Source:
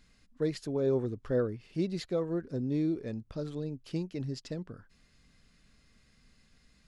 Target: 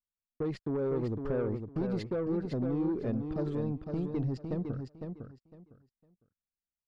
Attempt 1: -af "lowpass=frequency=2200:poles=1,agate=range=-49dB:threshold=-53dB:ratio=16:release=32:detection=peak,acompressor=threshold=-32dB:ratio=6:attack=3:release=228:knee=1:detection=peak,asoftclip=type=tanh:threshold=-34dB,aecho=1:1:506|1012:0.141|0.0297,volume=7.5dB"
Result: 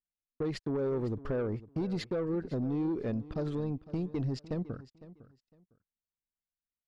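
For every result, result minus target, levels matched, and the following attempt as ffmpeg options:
echo-to-direct −11 dB; 2,000 Hz band +2.5 dB
-af "lowpass=frequency=2200:poles=1,agate=range=-49dB:threshold=-53dB:ratio=16:release=32:detection=peak,acompressor=threshold=-32dB:ratio=6:attack=3:release=228:knee=1:detection=peak,asoftclip=type=tanh:threshold=-34dB,aecho=1:1:506|1012|1518:0.501|0.105|0.0221,volume=7.5dB"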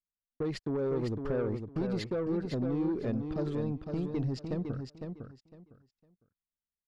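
2,000 Hz band +3.0 dB
-af "lowpass=frequency=1100:poles=1,agate=range=-49dB:threshold=-53dB:ratio=16:release=32:detection=peak,acompressor=threshold=-32dB:ratio=6:attack=3:release=228:knee=1:detection=peak,asoftclip=type=tanh:threshold=-34dB,aecho=1:1:506|1012|1518:0.501|0.105|0.0221,volume=7.5dB"

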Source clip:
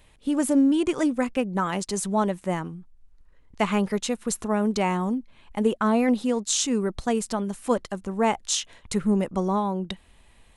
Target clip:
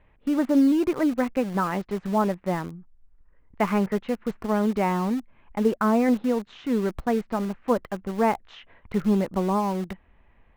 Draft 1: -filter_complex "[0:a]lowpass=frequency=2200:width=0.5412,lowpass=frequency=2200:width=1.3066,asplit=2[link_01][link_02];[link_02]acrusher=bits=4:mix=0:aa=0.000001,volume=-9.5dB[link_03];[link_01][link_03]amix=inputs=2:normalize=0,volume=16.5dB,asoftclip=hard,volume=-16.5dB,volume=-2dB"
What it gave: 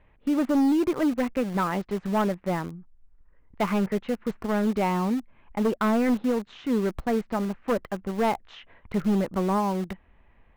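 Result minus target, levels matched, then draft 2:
gain into a clipping stage and back: distortion +39 dB
-filter_complex "[0:a]lowpass=frequency=2200:width=0.5412,lowpass=frequency=2200:width=1.3066,asplit=2[link_01][link_02];[link_02]acrusher=bits=4:mix=0:aa=0.000001,volume=-9.5dB[link_03];[link_01][link_03]amix=inputs=2:normalize=0,volume=8dB,asoftclip=hard,volume=-8dB,volume=-2dB"

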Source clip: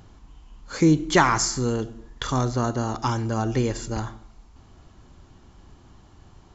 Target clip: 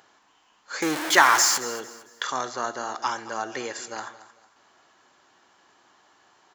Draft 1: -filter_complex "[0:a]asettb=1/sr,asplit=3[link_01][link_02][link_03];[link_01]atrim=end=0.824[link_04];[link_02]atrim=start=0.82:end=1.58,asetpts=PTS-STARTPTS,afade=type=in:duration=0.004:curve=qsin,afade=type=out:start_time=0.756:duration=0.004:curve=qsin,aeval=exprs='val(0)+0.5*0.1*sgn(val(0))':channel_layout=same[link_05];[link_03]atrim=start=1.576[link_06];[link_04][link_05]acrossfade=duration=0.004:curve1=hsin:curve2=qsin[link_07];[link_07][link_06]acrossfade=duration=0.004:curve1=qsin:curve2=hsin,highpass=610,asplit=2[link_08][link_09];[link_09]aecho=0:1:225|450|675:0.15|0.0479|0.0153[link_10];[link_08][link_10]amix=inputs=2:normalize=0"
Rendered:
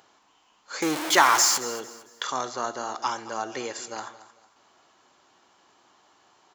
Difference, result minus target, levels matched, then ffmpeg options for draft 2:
2,000 Hz band −3.0 dB
-filter_complex "[0:a]asettb=1/sr,asplit=3[link_01][link_02][link_03];[link_01]atrim=end=0.824[link_04];[link_02]atrim=start=0.82:end=1.58,asetpts=PTS-STARTPTS,afade=type=in:duration=0.004:curve=qsin,afade=type=out:start_time=0.756:duration=0.004:curve=qsin,aeval=exprs='val(0)+0.5*0.1*sgn(val(0))':channel_layout=same[link_05];[link_03]atrim=start=1.576[link_06];[link_04][link_05]acrossfade=duration=0.004:curve1=hsin:curve2=qsin[link_07];[link_07][link_06]acrossfade=duration=0.004:curve1=qsin:curve2=hsin,highpass=610,equalizer=frequency=1700:width_type=o:width=0.46:gain=5.5,asplit=2[link_08][link_09];[link_09]aecho=0:1:225|450|675:0.15|0.0479|0.0153[link_10];[link_08][link_10]amix=inputs=2:normalize=0"

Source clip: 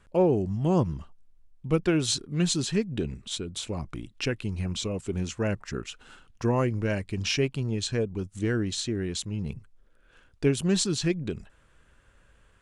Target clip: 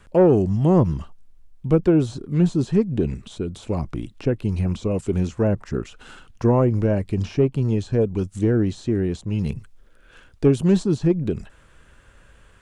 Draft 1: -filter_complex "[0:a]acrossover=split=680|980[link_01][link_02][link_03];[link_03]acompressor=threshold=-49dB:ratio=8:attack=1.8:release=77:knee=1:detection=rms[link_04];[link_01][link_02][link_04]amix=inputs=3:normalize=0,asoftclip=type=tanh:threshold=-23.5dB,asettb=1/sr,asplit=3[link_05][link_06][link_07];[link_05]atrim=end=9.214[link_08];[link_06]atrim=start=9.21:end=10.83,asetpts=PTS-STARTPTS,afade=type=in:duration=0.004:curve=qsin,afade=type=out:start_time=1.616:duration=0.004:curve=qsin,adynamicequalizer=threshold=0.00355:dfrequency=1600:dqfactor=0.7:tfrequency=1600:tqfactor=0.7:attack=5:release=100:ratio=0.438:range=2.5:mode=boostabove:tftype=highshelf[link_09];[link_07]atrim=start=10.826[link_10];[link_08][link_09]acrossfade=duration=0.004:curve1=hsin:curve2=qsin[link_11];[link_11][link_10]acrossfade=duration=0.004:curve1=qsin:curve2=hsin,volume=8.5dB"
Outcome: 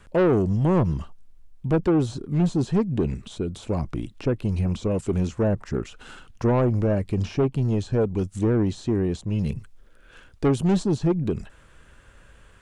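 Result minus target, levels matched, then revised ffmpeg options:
soft clipping: distortion +12 dB
-filter_complex "[0:a]acrossover=split=680|980[link_01][link_02][link_03];[link_03]acompressor=threshold=-49dB:ratio=8:attack=1.8:release=77:knee=1:detection=rms[link_04];[link_01][link_02][link_04]amix=inputs=3:normalize=0,asoftclip=type=tanh:threshold=-14dB,asettb=1/sr,asplit=3[link_05][link_06][link_07];[link_05]atrim=end=9.214[link_08];[link_06]atrim=start=9.21:end=10.83,asetpts=PTS-STARTPTS,afade=type=in:duration=0.004:curve=qsin,afade=type=out:start_time=1.616:duration=0.004:curve=qsin,adynamicequalizer=threshold=0.00355:dfrequency=1600:dqfactor=0.7:tfrequency=1600:tqfactor=0.7:attack=5:release=100:ratio=0.438:range=2.5:mode=boostabove:tftype=highshelf[link_09];[link_07]atrim=start=10.826[link_10];[link_08][link_09]acrossfade=duration=0.004:curve1=hsin:curve2=qsin[link_11];[link_11][link_10]acrossfade=duration=0.004:curve1=qsin:curve2=hsin,volume=8.5dB"

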